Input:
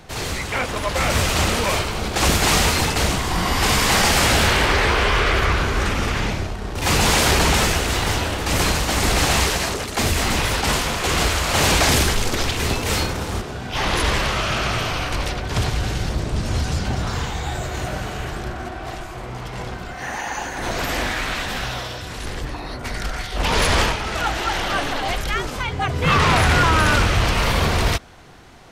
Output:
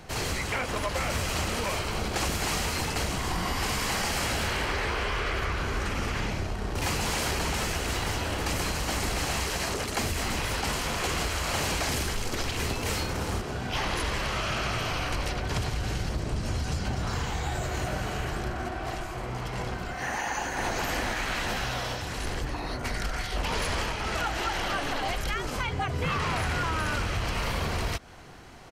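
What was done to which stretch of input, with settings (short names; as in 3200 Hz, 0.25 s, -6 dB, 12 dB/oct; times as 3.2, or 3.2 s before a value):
20.17–20.72 echo throw 0.41 s, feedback 60%, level -2 dB
whole clip: notch 3600 Hz, Q 15; compressor 10:1, threshold -23 dBFS; gain -2.5 dB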